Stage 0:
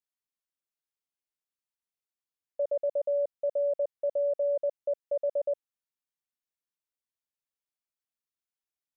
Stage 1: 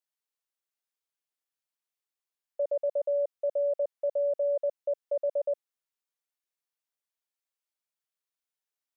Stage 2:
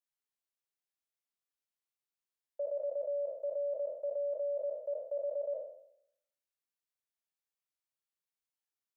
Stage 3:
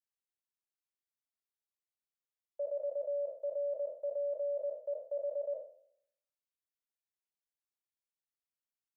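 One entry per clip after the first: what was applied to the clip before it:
high-pass 390 Hz 12 dB/octave; trim +1 dB
spectral sustain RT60 0.73 s; trim -7.5 dB
upward expansion 1.5:1, over -50 dBFS

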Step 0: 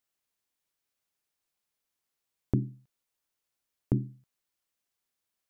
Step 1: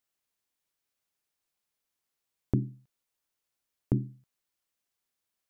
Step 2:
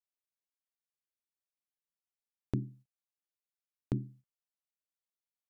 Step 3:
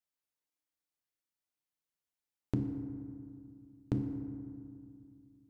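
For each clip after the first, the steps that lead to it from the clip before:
no audible change
gate -50 dBFS, range -12 dB; trim -6 dB
FDN reverb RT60 2.3 s, low-frequency decay 1.35×, high-frequency decay 0.4×, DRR 4 dB

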